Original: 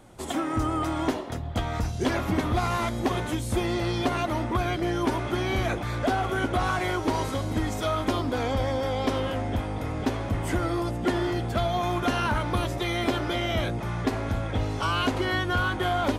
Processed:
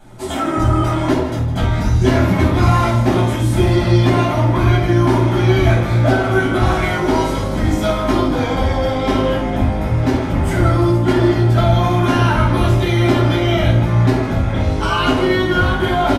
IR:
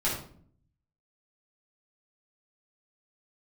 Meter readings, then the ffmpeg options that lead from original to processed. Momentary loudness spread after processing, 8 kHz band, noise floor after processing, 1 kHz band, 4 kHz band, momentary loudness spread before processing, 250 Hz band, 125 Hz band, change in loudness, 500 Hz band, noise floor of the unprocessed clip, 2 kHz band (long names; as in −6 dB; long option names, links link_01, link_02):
4 LU, +6.5 dB, −20 dBFS, +8.5 dB, +7.5 dB, 4 LU, +11.5 dB, +15.5 dB, +12.0 dB, +11.0 dB, −33 dBFS, +9.0 dB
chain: -filter_complex "[0:a]aecho=1:1:159:0.224[link_01];[1:a]atrim=start_sample=2205[link_02];[link_01][link_02]afir=irnorm=-1:irlink=0"